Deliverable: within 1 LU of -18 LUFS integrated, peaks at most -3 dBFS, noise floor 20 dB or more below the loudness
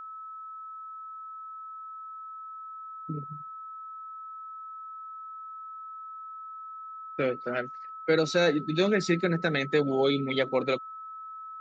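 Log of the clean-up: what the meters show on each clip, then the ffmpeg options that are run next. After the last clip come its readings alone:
steady tone 1300 Hz; tone level -39 dBFS; loudness -31.5 LUFS; peak -12.5 dBFS; loudness target -18.0 LUFS
-> -af "bandreject=f=1.3k:w=30"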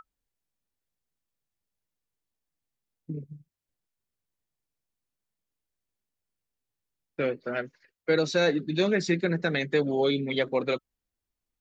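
steady tone none; loudness -27.0 LUFS; peak -12.5 dBFS; loudness target -18.0 LUFS
-> -af "volume=9dB"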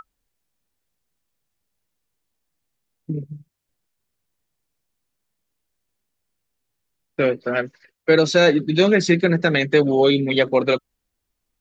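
loudness -18.0 LUFS; peak -3.5 dBFS; noise floor -79 dBFS

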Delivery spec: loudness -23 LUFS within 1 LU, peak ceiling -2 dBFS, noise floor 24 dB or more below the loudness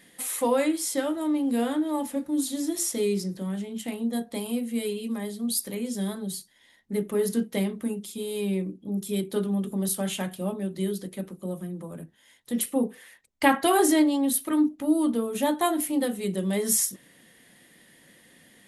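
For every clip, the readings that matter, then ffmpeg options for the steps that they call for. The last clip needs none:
loudness -27.0 LUFS; peak -7.0 dBFS; loudness target -23.0 LUFS
-> -af "volume=4dB"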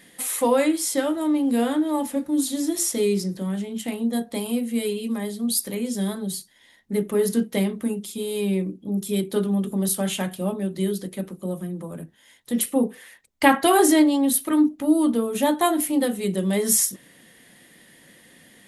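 loudness -23.0 LUFS; peak -3.0 dBFS; noise floor -55 dBFS

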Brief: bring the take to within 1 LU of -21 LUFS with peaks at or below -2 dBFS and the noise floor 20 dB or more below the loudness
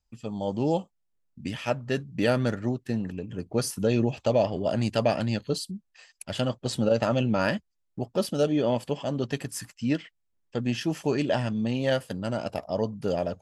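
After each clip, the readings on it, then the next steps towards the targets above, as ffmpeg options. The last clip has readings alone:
loudness -28.0 LUFS; peak -10.0 dBFS; loudness target -21.0 LUFS
-> -af "volume=7dB"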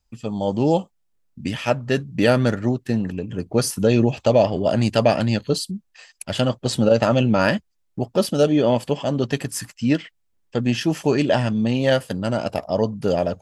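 loudness -21.0 LUFS; peak -3.0 dBFS; noise floor -68 dBFS

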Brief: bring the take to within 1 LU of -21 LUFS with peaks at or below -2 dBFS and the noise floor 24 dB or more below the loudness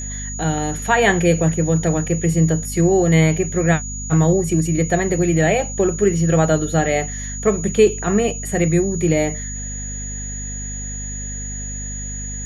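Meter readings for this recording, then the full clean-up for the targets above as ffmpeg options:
hum 50 Hz; harmonics up to 250 Hz; hum level -28 dBFS; steady tone 6800 Hz; tone level -29 dBFS; loudness -19.0 LUFS; peak -2.5 dBFS; loudness target -21.0 LUFS
-> -af "bandreject=f=50:t=h:w=4,bandreject=f=100:t=h:w=4,bandreject=f=150:t=h:w=4,bandreject=f=200:t=h:w=4,bandreject=f=250:t=h:w=4"
-af "bandreject=f=6.8k:w=30"
-af "volume=-2dB"

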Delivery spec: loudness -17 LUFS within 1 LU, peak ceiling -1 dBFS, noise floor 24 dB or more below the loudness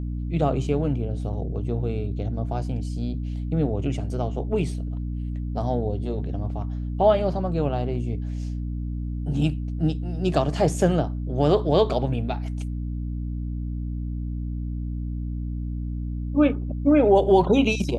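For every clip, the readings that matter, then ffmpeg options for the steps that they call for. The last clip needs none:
hum 60 Hz; harmonics up to 300 Hz; hum level -26 dBFS; loudness -25.0 LUFS; peak -5.5 dBFS; loudness target -17.0 LUFS
-> -af "bandreject=f=60:t=h:w=6,bandreject=f=120:t=h:w=6,bandreject=f=180:t=h:w=6,bandreject=f=240:t=h:w=6,bandreject=f=300:t=h:w=6"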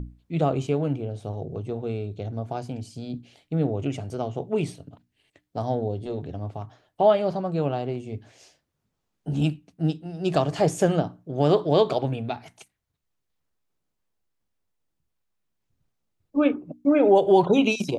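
hum none; loudness -25.0 LUFS; peak -6.5 dBFS; loudness target -17.0 LUFS
-> -af "volume=8dB,alimiter=limit=-1dB:level=0:latency=1"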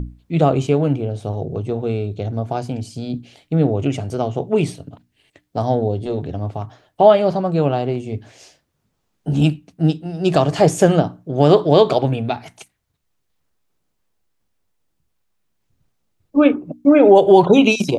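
loudness -17.0 LUFS; peak -1.0 dBFS; noise floor -71 dBFS

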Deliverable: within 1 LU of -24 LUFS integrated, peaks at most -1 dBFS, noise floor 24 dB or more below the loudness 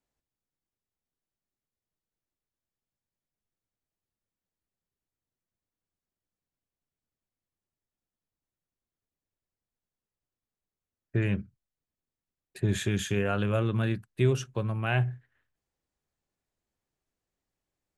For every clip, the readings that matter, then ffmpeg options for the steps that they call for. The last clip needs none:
loudness -29.5 LUFS; peak -13.0 dBFS; loudness target -24.0 LUFS
-> -af "volume=5.5dB"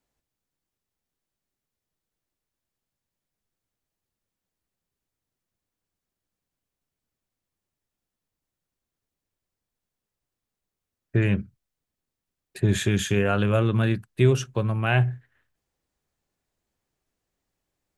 loudness -24.0 LUFS; peak -7.5 dBFS; noise floor -87 dBFS

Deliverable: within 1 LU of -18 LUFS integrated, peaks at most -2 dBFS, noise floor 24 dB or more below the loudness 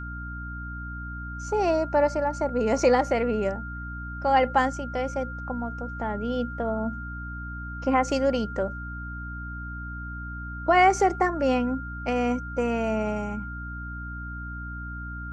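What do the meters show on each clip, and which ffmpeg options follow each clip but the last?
hum 60 Hz; harmonics up to 300 Hz; hum level -34 dBFS; steady tone 1400 Hz; tone level -37 dBFS; loudness -27.0 LUFS; peak -8.5 dBFS; loudness target -18.0 LUFS
-> -af "bandreject=f=60:t=h:w=6,bandreject=f=120:t=h:w=6,bandreject=f=180:t=h:w=6,bandreject=f=240:t=h:w=6,bandreject=f=300:t=h:w=6"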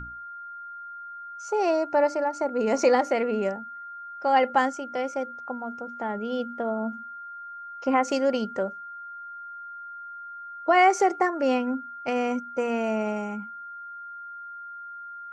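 hum none; steady tone 1400 Hz; tone level -37 dBFS
-> -af "bandreject=f=1.4k:w=30"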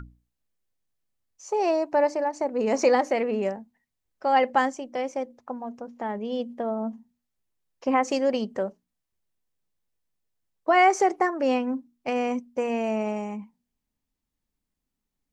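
steady tone none; loudness -26.0 LUFS; peak -9.0 dBFS; loudness target -18.0 LUFS
-> -af "volume=8dB,alimiter=limit=-2dB:level=0:latency=1"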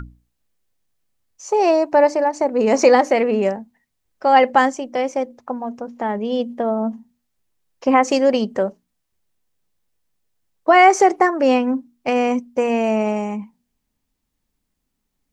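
loudness -18.0 LUFS; peak -2.0 dBFS; noise floor -75 dBFS

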